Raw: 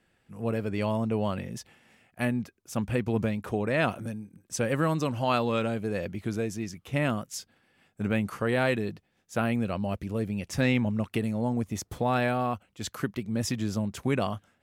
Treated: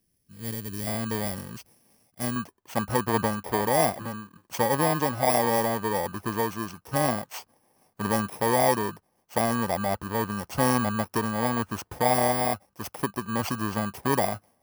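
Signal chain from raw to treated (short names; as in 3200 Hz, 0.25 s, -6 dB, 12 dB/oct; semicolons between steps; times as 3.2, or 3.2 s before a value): FFT order left unsorted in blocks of 32 samples; bell 850 Hz -11.5 dB 1.9 oct, from 0.87 s +3 dB, from 2.36 s +14 dB; gain -2.5 dB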